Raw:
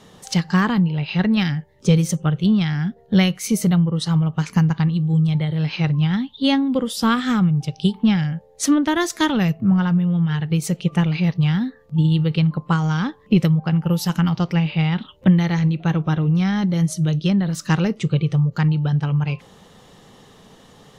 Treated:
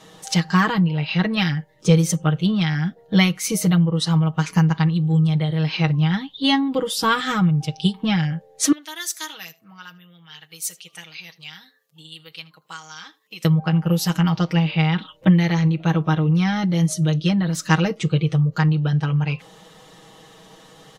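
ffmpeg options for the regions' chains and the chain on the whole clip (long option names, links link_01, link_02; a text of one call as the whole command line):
ffmpeg -i in.wav -filter_complex "[0:a]asettb=1/sr,asplit=3[link_01][link_02][link_03];[link_01]atrim=end=8.724[link_04];[link_02]atrim=start=8.72:end=13.45,asetpts=PTS-STARTPTS,afade=type=in:duration=0.004:curve=qsin,afade=type=out:start_time=4.726:duration=0.004:curve=qsin,aderivative,aecho=1:1:79:0.0841,atrim=end_sample=208593[link_05];[link_03]atrim=start=13.446[link_06];[link_04][link_05]acrossfade=duration=0.004:curve1=hsin:curve2=qsin[link_07];[link_07][link_06]acrossfade=duration=0.004:curve1=qsin:curve2=hsin,lowshelf=frequency=240:gain=-8.5,aecho=1:1:6.3:0.76,volume=1dB" out.wav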